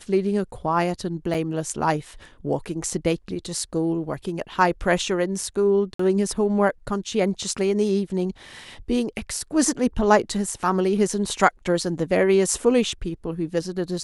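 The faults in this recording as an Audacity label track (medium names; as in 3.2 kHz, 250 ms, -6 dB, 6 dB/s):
1.340000	1.350000	dropout 5.8 ms
5.940000	5.990000	dropout 54 ms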